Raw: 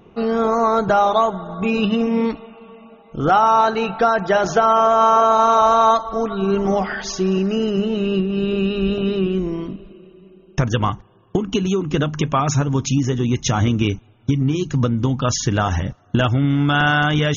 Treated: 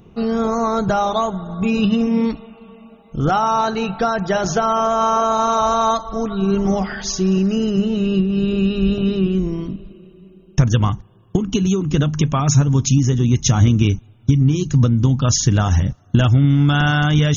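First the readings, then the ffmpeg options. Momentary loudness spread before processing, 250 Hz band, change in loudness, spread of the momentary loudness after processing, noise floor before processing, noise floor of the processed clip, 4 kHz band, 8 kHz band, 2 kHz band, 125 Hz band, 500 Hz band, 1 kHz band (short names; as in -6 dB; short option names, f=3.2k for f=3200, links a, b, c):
10 LU, +2.5 dB, +0.5 dB, 8 LU, -49 dBFS, -48 dBFS, +0.5 dB, n/a, -3.0 dB, +5.5 dB, -2.5 dB, -3.5 dB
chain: -af "bass=f=250:g=10,treble=f=4k:g=10,volume=-3.5dB"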